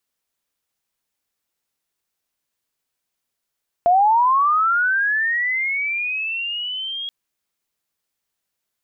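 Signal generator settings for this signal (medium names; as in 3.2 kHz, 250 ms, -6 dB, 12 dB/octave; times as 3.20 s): sweep linear 680 Hz -> 3.3 kHz -11 dBFS -> -25.5 dBFS 3.23 s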